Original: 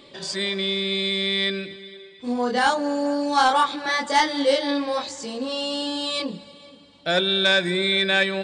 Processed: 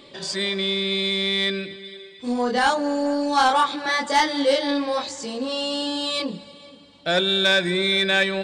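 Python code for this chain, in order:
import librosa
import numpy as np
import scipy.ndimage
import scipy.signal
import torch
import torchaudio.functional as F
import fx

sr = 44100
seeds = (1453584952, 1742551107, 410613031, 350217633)

p1 = fx.high_shelf(x, sr, hz=5200.0, db=7.0, at=(1.84, 2.43))
p2 = 10.0 ** (-18.0 / 20.0) * np.tanh(p1 / 10.0 ** (-18.0 / 20.0))
p3 = p1 + (p2 * 10.0 ** (-6.5 / 20.0))
y = p3 * 10.0 ** (-2.0 / 20.0)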